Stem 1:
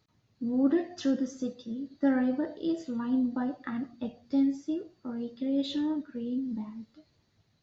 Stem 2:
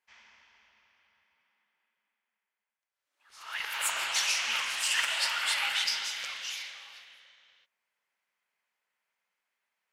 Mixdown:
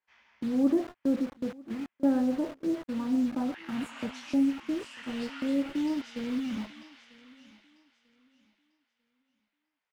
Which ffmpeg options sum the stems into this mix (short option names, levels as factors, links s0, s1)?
-filter_complex "[0:a]lowpass=f=1300:w=0.5412,lowpass=f=1300:w=1.3066,acrusher=bits=6:mix=0:aa=0.000001,agate=range=0.0708:threshold=0.0141:ratio=16:detection=peak,volume=1.06,asplit=3[s0][s1][s2];[s1]volume=0.0668[s3];[1:a]acompressor=threshold=0.0251:ratio=4,flanger=delay=17:depth=6.2:speed=0.32,volume=1.06,asplit=2[s4][s5];[s5]volume=0.133[s6];[s2]apad=whole_len=437902[s7];[s4][s7]sidechaincompress=threshold=0.0251:ratio=6:attack=5.2:release=1290[s8];[s3][s6]amix=inputs=2:normalize=0,aecho=0:1:944|1888|2832|3776:1|0.26|0.0676|0.0176[s9];[s0][s8][s9]amix=inputs=3:normalize=0,lowpass=f=2200:p=1"